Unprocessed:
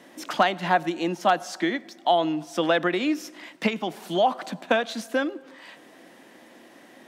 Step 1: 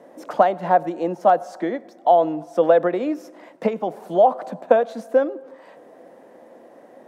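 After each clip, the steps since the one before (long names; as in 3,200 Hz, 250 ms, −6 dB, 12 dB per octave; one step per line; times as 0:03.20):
drawn EQ curve 340 Hz 0 dB, 490 Hz +11 dB, 3,100 Hz −14 dB, 9,100 Hz −9 dB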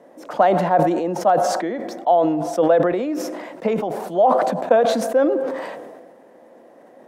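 level that may fall only so fast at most 35 dB per second
level −1.5 dB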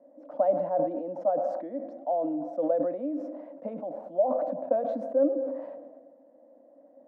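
pair of resonant band-passes 400 Hz, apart 0.99 octaves
level −3.5 dB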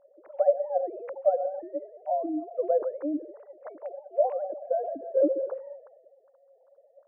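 three sine waves on the formant tracks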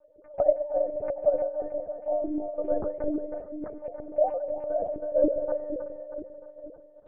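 echo with a time of its own for lows and highs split 500 Hz, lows 472 ms, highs 313 ms, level −7.5 dB
one-pitch LPC vocoder at 8 kHz 300 Hz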